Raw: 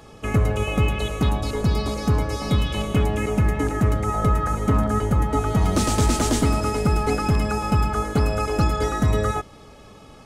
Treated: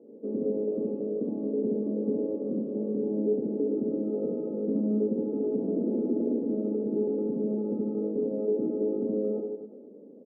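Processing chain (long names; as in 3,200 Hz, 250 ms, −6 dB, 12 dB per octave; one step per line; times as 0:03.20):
elliptic band-pass filter 220–520 Hz, stop band 60 dB
brickwall limiter −22 dBFS, peak gain reduction 10 dB
on a send: reverse bouncing-ball delay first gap 70 ms, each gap 1.15×, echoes 5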